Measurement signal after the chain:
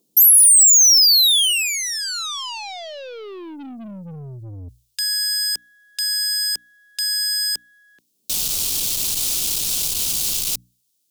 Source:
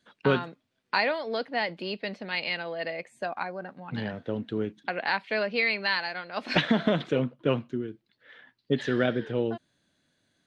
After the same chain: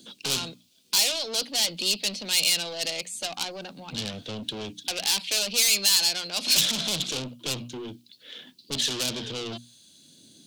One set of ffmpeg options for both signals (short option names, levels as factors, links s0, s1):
-filter_complex "[0:a]acrossover=split=170|370|1500[s0][s1][s2][s3];[s1]acompressor=mode=upward:threshold=0.00794:ratio=2.5[s4];[s0][s4][s2][s3]amix=inputs=4:normalize=0,lowshelf=f=360:g=4.5,bandreject=f=60:t=h:w=6,bandreject=f=120:t=h:w=6,bandreject=f=180:t=h:w=6,bandreject=f=240:t=h:w=6,bandreject=f=300:t=h:w=6,aeval=exprs='(tanh(44.7*val(0)+0.1)-tanh(0.1))/44.7':c=same,aexciter=amount=7.6:drive=8.4:freq=2800"